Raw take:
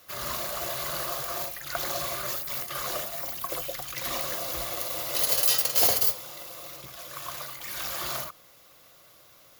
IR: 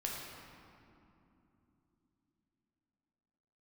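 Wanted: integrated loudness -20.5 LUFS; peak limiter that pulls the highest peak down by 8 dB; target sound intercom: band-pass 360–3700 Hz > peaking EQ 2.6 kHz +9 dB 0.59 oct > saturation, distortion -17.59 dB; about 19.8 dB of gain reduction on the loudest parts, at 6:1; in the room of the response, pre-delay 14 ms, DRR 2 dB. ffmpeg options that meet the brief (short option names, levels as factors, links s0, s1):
-filter_complex "[0:a]acompressor=threshold=0.01:ratio=6,alimiter=level_in=2.51:limit=0.0631:level=0:latency=1,volume=0.398,asplit=2[s0][s1];[1:a]atrim=start_sample=2205,adelay=14[s2];[s1][s2]afir=irnorm=-1:irlink=0,volume=0.631[s3];[s0][s3]amix=inputs=2:normalize=0,highpass=360,lowpass=3700,equalizer=f=2600:t=o:w=0.59:g=9,asoftclip=threshold=0.0126,volume=17.8"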